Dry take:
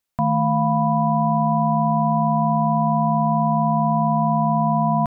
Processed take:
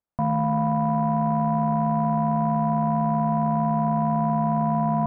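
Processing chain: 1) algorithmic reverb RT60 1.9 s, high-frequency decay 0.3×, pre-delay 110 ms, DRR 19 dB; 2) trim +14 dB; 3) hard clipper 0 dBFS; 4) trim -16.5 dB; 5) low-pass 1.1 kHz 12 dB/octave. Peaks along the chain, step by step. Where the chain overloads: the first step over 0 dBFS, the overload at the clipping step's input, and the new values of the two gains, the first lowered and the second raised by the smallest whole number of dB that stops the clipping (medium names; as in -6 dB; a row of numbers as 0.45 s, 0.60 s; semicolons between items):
-9.5 dBFS, +4.5 dBFS, 0.0 dBFS, -16.5 dBFS, -16.0 dBFS; step 2, 4.5 dB; step 2 +9 dB, step 4 -11.5 dB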